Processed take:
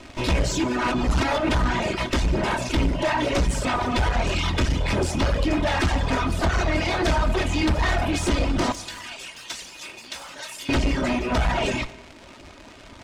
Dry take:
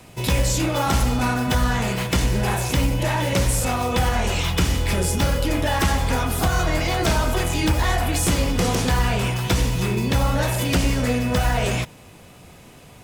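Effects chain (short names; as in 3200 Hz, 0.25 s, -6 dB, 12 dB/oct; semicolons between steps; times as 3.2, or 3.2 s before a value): minimum comb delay 3.2 ms; 8.72–10.69 differentiator; reverb removal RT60 0.84 s; crackle 250/s -33 dBFS; air absorption 100 m; soft clip -21 dBFS, distortion -13 dB; 0.64–1.49 reverse; plate-style reverb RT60 1.5 s, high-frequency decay 0.95×, DRR 14 dB; gain +5 dB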